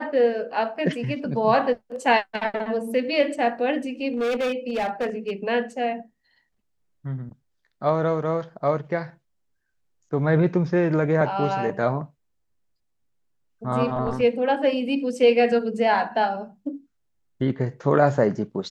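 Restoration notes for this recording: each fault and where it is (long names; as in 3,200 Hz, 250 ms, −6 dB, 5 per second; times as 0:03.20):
0:04.14–0:05.31: clipping −21 dBFS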